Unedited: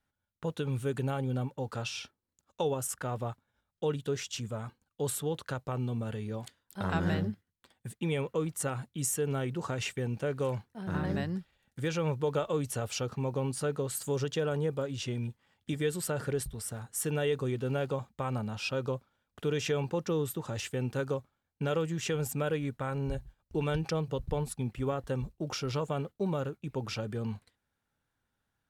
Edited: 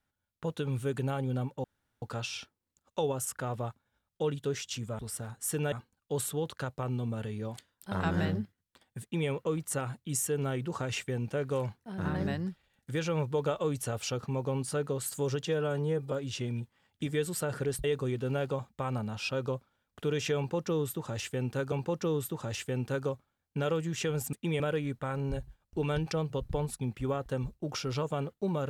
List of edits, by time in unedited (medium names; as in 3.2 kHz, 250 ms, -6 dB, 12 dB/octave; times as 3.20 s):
1.64 s: insert room tone 0.38 s
7.91–8.18 s: copy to 22.38 s
14.35–14.79 s: stretch 1.5×
16.51–17.24 s: move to 4.61 s
19.77–21.12 s: loop, 2 plays